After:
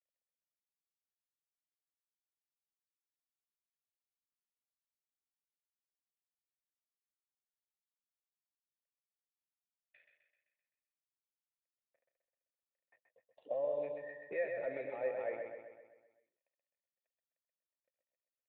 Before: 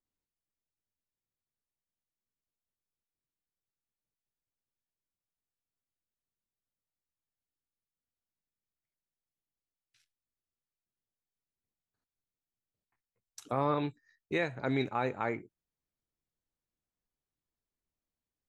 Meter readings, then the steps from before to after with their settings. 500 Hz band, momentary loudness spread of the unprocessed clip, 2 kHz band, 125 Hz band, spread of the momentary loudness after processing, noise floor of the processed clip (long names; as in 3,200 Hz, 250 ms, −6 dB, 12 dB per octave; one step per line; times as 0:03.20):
−1.0 dB, 8 LU, −8.0 dB, −25.0 dB, 10 LU, below −85 dBFS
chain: mu-law and A-law mismatch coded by mu
spectral tilt +3 dB per octave
downward compressor 4 to 1, threshold −40 dBFS, peak gain reduction 12.5 dB
high-pass filter 100 Hz 24 dB per octave
hard clipping −38 dBFS, distortion −10 dB
parametric band 640 Hz +12.5 dB 0.5 octaves
gain on a spectral selection 0:12.97–0:13.83, 1,100–2,700 Hz −19 dB
formant resonators in series e
repeating echo 129 ms, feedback 53%, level −5 dB
level +10.5 dB